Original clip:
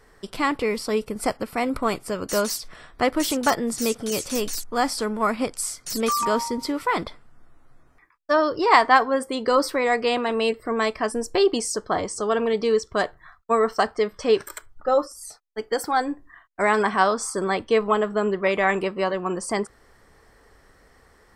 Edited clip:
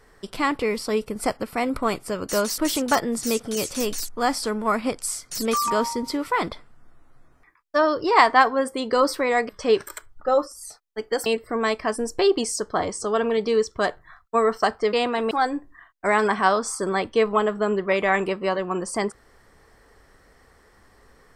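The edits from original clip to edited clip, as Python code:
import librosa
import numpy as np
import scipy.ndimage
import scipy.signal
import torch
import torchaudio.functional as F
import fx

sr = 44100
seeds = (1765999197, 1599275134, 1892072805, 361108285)

y = fx.edit(x, sr, fx.cut(start_s=2.58, length_s=0.55),
    fx.swap(start_s=10.04, length_s=0.38, other_s=14.09, other_length_s=1.77), tone=tone)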